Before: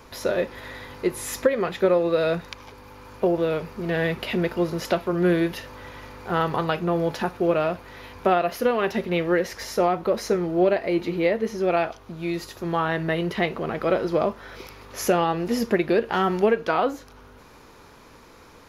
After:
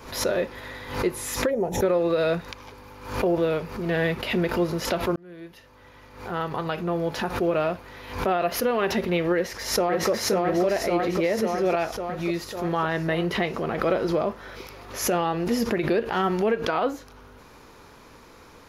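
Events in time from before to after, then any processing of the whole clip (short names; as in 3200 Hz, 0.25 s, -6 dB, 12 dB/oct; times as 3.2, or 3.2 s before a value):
1.5–1.82 spectral gain 970–5300 Hz -20 dB
5.16–8.74 fade in equal-power
9.34–10.1 echo throw 0.55 s, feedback 65%, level 0 dB
whole clip: limiter -14.5 dBFS; backwards sustainer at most 97 dB/s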